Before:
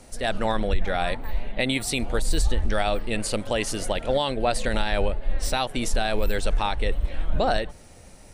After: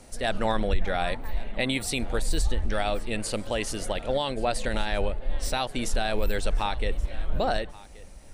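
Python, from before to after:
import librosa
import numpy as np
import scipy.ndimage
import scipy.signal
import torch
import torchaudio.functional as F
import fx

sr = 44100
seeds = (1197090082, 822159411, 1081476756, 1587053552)

p1 = fx.rider(x, sr, range_db=10, speed_s=2.0)
p2 = p1 + fx.echo_single(p1, sr, ms=1128, db=-20.5, dry=0)
y = F.gain(torch.from_numpy(p2), -3.0).numpy()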